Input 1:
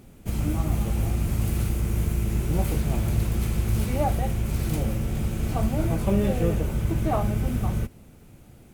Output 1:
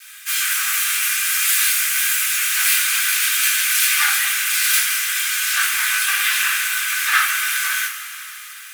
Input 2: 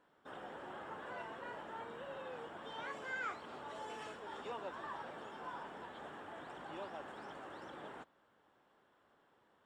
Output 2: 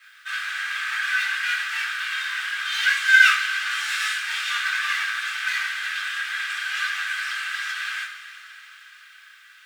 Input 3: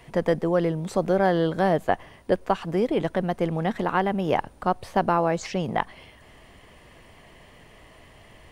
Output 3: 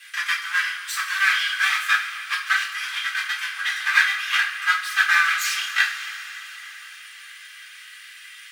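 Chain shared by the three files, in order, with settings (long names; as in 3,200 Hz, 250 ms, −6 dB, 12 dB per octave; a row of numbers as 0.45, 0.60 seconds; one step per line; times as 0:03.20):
lower of the sound and its delayed copy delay 2.5 ms
Butterworth high-pass 1,400 Hz 48 dB per octave
coupled-rooms reverb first 0.35 s, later 4.3 s, from −18 dB, DRR −6.5 dB
normalise the peak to −3 dBFS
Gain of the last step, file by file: +16.5, +21.5, +7.5 decibels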